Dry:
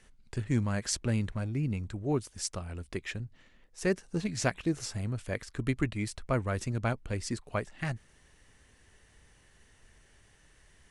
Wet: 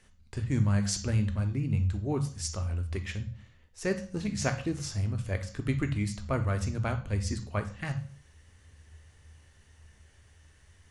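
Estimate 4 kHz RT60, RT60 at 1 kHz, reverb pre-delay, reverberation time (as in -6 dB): 0.40 s, 0.45 s, 3 ms, 0.45 s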